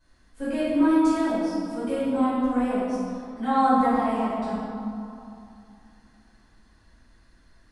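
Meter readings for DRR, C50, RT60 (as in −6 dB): −15.5 dB, −4.0 dB, 2.8 s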